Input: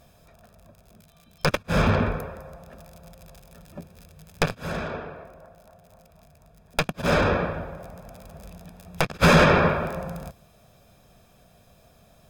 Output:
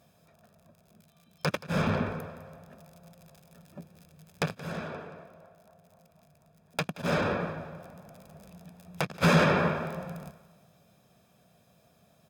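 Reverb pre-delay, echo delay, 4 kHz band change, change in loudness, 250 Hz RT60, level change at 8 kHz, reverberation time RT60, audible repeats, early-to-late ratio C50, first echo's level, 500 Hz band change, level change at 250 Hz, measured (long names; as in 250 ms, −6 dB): no reverb audible, 176 ms, −7.0 dB, −6.5 dB, no reverb audible, −7.0 dB, no reverb audible, 4, no reverb audible, −18.0 dB, −7.0 dB, −5.0 dB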